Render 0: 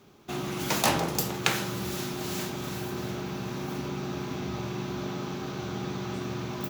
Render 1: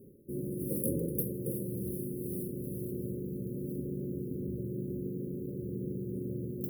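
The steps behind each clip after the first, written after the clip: FFT band-reject 580–9100 Hz; reverse; upward compressor, threshold -37 dBFS; reverse; trim -2.5 dB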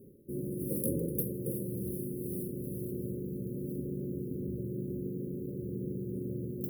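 overload inside the chain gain 19 dB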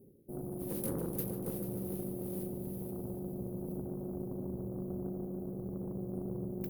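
Chebyshev shaper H 8 -20 dB, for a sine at -19 dBFS; multi-head delay 147 ms, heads all three, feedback 57%, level -14 dB; trim -5 dB

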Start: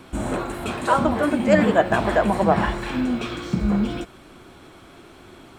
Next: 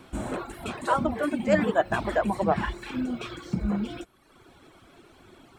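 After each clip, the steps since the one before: reverb removal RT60 0.99 s; trim -5 dB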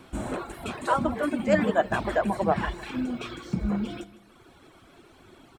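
feedback delay 156 ms, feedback 41%, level -17 dB

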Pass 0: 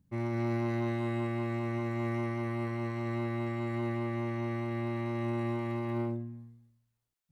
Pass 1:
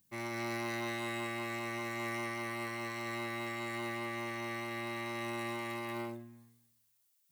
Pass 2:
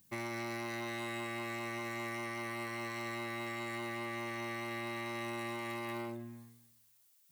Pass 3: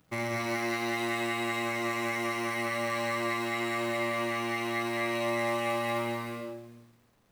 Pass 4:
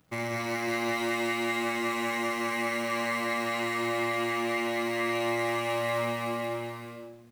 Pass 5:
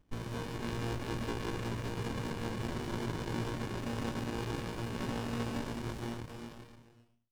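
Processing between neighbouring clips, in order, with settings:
tilt EQ +4.5 dB/octave
compression, threshold -44 dBFS, peak gain reduction 9 dB; trim +6 dB
hysteresis with a dead band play -55.5 dBFS; gated-style reverb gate 470 ms flat, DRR -1 dB; trim +6 dB
delay 554 ms -4.5 dB
fade out at the end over 1.70 s; frequency inversion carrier 3.2 kHz; sliding maximum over 65 samples

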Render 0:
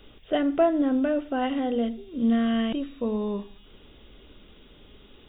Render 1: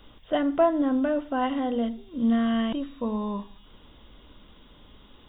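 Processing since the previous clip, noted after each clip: graphic EQ with 31 bands 400 Hz -8 dB, 1 kHz +8 dB, 2.5 kHz -5 dB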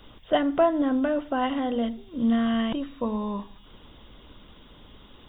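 harmonic-percussive split percussive +5 dB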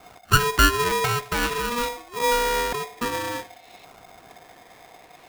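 LFO low-pass saw up 0.52 Hz 640–3100 Hz; polarity switched at an audio rate 720 Hz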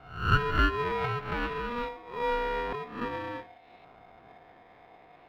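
reverse spectral sustain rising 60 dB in 0.51 s; distance through air 390 m; trim -6 dB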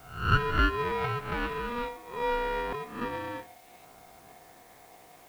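word length cut 10-bit, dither triangular

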